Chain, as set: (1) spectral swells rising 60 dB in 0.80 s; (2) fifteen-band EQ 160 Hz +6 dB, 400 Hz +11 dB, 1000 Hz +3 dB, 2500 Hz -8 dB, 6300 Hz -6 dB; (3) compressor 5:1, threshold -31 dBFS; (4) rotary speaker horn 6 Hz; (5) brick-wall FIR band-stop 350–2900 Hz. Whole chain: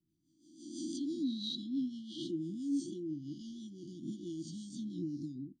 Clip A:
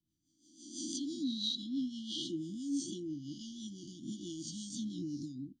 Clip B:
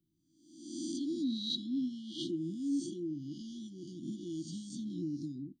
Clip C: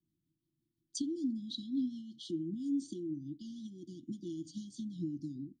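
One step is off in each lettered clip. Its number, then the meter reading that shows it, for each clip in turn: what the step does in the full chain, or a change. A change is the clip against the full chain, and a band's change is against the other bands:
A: 2, 8 kHz band +9.5 dB; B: 4, 4 kHz band +2.0 dB; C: 1, 4 kHz band -4.0 dB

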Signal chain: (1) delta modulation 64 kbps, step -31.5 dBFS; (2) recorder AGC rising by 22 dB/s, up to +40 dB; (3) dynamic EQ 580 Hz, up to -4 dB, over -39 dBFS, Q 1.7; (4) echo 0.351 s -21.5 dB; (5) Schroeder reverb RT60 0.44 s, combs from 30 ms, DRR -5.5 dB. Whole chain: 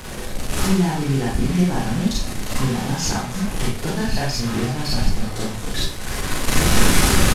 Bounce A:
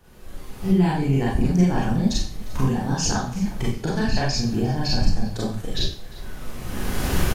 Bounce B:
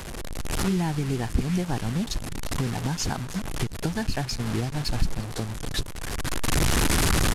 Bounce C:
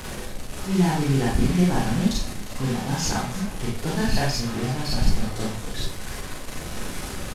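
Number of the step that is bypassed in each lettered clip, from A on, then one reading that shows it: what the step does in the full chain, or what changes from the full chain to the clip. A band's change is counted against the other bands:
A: 1, 8 kHz band -5.0 dB; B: 5, crest factor change -2.5 dB; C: 2, momentary loudness spread change +3 LU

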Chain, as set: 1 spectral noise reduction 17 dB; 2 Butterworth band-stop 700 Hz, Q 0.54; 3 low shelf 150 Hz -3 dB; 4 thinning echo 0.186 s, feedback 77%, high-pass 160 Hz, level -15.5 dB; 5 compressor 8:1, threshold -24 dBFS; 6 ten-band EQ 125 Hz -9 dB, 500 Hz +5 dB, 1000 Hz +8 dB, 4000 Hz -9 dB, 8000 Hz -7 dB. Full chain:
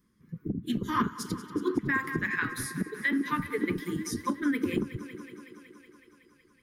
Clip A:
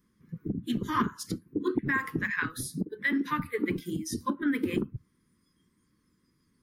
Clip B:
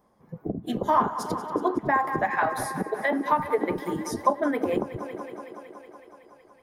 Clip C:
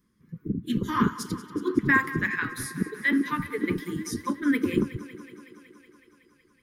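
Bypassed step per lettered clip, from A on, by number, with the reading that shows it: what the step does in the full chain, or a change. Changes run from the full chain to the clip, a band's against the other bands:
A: 4, momentary loudness spread change -6 LU; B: 2, momentary loudness spread change +2 LU; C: 5, mean gain reduction 2.0 dB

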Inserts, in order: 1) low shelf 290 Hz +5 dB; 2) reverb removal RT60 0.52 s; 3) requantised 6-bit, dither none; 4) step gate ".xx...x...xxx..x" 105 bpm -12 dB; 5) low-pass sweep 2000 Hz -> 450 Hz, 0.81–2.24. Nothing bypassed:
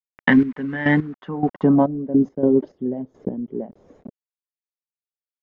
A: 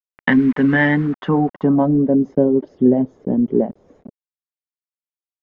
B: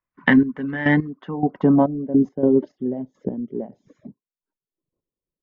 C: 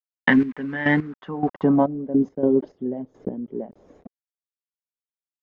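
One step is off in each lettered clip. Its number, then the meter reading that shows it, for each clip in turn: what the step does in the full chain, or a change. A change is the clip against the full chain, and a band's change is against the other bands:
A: 4, momentary loudness spread change -8 LU; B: 3, distortion -23 dB; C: 1, 125 Hz band -3.0 dB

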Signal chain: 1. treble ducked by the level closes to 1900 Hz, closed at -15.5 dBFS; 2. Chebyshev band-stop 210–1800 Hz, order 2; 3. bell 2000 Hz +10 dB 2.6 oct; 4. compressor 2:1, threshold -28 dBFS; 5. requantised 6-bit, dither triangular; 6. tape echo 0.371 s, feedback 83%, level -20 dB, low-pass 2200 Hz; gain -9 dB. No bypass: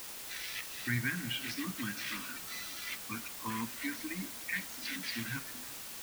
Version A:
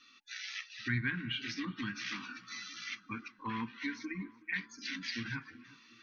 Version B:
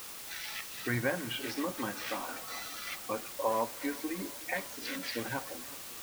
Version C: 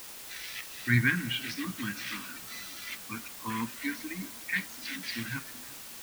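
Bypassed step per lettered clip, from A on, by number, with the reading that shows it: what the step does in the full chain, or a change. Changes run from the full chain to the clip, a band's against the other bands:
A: 5, distortion -4 dB; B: 2, 500 Hz band +17.5 dB; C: 4, crest factor change +4.0 dB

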